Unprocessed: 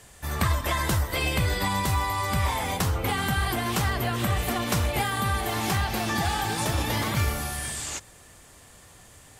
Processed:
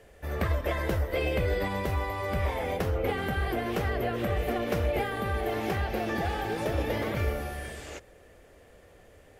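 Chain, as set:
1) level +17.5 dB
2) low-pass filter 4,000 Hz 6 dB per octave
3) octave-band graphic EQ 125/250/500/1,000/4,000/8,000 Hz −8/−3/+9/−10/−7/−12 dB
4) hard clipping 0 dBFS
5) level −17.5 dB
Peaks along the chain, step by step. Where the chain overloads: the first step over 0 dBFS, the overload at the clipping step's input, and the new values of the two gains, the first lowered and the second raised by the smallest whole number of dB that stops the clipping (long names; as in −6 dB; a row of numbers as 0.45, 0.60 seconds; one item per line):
+7.0, +5.5, +3.5, 0.0, −17.5 dBFS
step 1, 3.5 dB
step 1 +13.5 dB, step 5 −13.5 dB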